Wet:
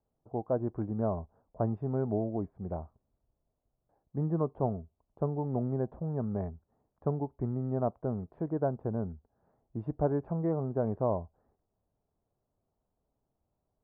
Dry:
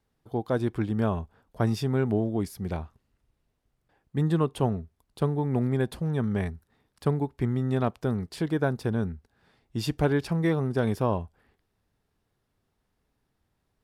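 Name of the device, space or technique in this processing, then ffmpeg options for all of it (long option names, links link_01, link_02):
under water: -af "lowpass=frequency=1100:width=0.5412,lowpass=frequency=1100:width=1.3066,equalizer=frequency=630:width_type=o:width=0.54:gain=7.5,volume=-6.5dB"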